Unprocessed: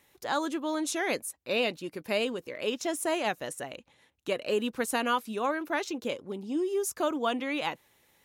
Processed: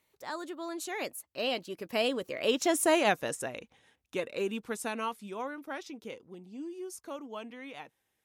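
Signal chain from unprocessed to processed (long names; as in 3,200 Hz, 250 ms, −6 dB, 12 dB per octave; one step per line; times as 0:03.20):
source passing by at 0:02.82, 27 m/s, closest 16 metres
level +4.5 dB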